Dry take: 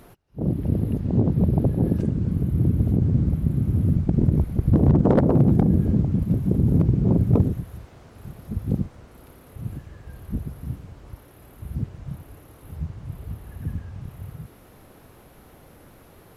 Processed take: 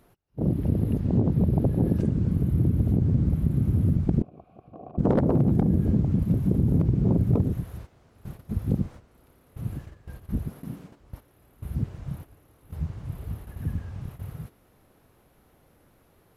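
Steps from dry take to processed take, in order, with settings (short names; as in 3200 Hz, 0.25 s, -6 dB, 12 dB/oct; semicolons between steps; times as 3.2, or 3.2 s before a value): gate -39 dBFS, range -11 dB; compressor, threshold -17 dBFS, peak gain reduction 6 dB; 4.22–4.98 vowel filter a; 10.49–11 resonant low shelf 130 Hz -14 dB, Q 1.5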